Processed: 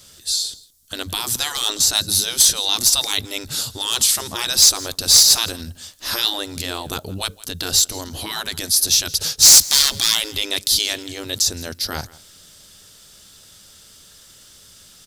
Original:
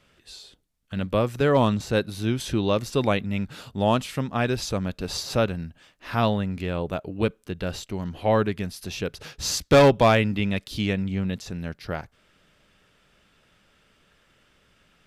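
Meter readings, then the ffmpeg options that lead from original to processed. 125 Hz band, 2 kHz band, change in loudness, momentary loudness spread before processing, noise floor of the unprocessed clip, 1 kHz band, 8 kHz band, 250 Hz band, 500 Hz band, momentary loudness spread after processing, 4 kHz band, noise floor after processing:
−9.0 dB, +2.0 dB, +9.0 dB, 15 LU, −63 dBFS, −4.5 dB, +23.5 dB, −10.0 dB, −11.5 dB, 17 LU, +18.0 dB, −48 dBFS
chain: -filter_complex "[0:a]afftfilt=real='re*lt(hypot(re,im),0.141)':imag='im*lt(hypot(re,im),0.141)':win_size=1024:overlap=0.75,equalizer=frequency=90:width=2.6:gain=7,aexciter=amount=10.2:drive=4:freq=3700,asoftclip=type=tanh:threshold=-9.5dB,asplit=2[link_01][link_02];[link_02]aecho=0:1:166:0.0841[link_03];[link_01][link_03]amix=inputs=2:normalize=0,volume=6dB"

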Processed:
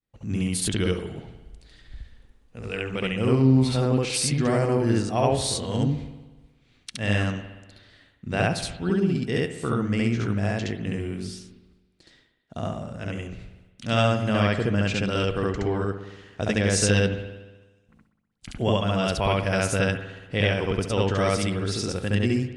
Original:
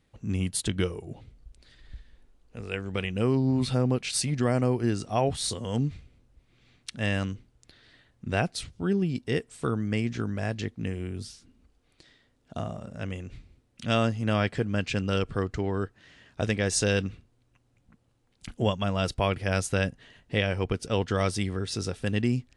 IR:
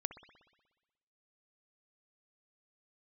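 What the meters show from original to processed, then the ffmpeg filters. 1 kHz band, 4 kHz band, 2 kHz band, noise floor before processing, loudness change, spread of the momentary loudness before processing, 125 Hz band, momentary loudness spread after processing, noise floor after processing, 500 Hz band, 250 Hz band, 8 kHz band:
+4.0 dB, +4.0 dB, +4.0 dB, −68 dBFS, +4.0 dB, 13 LU, +4.0 dB, 14 LU, −63 dBFS, +4.0 dB, +4.0 dB, +3.5 dB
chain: -filter_complex "[0:a]agate=range=-33dB:threshold=-56dB:ratio=3:detection=peak,asplit=2[link_01][link_02];[1:a]atrim=start_sample=2205,adelay=69[link_03];[link_02][link_03]afir=irnorm=-1:irlink=0,volume=3dB[link_04];[link_01][link_04]amix=inputs=2:normalize=0"

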